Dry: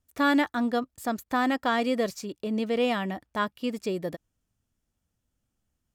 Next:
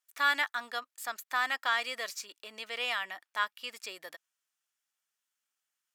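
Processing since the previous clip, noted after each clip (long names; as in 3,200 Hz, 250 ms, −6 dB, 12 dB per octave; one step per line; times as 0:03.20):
Chebyshev high-pass filter 1,500 Hz, order 2
level +1.5 dB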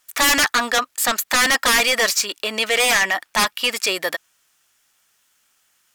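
low-shelf EQ 240 Hz +5 dB
sine wavefolder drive 10 dB, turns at −21 dBFS
level +9 dB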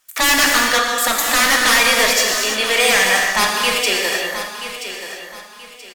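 repeating echo 979 ms, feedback 31%, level −11 dB
reverb whose tail is shaped and stops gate 370 ms flat, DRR −1 dB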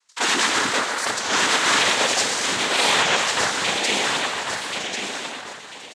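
cochlear-implant simulation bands 6
single-tap delay 1,098 ms −5.5 dB
wow of a warped record 33 1/3 rpm, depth 160 cents
level −5 dB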